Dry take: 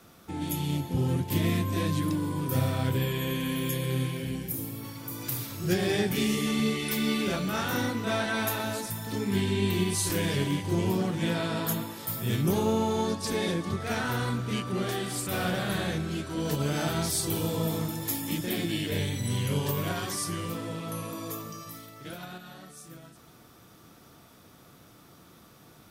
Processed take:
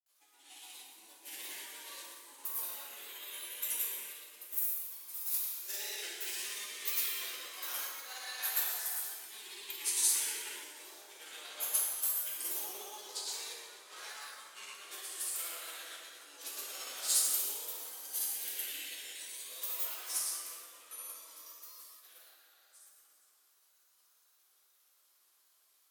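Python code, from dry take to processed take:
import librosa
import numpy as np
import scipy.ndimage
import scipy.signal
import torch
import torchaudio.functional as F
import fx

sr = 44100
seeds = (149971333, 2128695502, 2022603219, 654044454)

y = scipy.signal.sosfilt(scipy.signal.butter(4, 380.0, 'highpass', fs=sr, output='sos'), x)
y = np.diff(y, prepend=0.0)
y = fx.granulator(y, sr, seeds[0], grain_ms=100.0, per_s=17.0, spray_ms=100.0, spread_st=3)
y = fx.rev_plate(y, sr, seeds[1], rt60_s=2.6, hf_ratio=0.55, predelay_ms=0, drr_db=-6.5)
y = fx.upward_expand(y, sr, threshold_db=-50.0, expansion=1.5)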